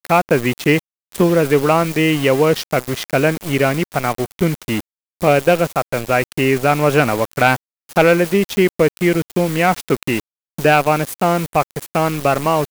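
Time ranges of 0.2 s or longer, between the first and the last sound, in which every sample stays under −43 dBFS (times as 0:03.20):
0:00.79–0:01.12
0:04.81–0:05.21
0:07.56–0:07.89
0:10.20–0:10.58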